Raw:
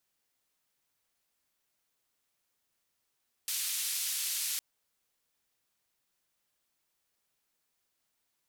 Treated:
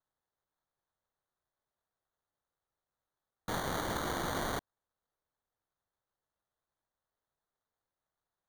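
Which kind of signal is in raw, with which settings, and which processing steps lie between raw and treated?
band-limited noise 2,800–14,000 Hz, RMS −34 dBFS 1.11 s
adaptive Wiener filter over 15 samples
parametric band 260 Hz −13.5 dB 1 octave
decimation without filtering 17×

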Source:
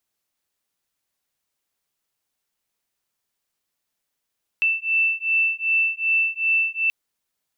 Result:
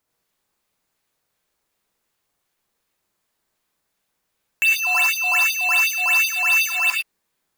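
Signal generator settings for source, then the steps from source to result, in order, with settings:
two tones that beat 2,660 Hz, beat 2.6 Hz, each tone −21.5 dBFS 2.28 s
in parallel at −5 dB: sample-and-hold swept by an LFO 9×, swing 100% 2.7 Hz
on the sum: reverb whose tail is shaped and stops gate 130 ms rising, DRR 0 dB

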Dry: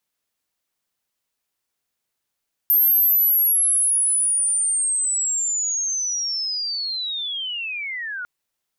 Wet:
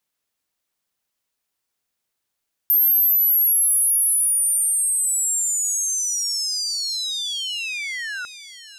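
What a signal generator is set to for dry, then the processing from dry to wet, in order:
glide linear 13,000 Hz → 1,400 Hz −13 dBFS → −27 dBFS 5.55 s
delay with a high-pass on its return 587 ms, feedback 56%, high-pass 3,300 Hz, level −10 dB

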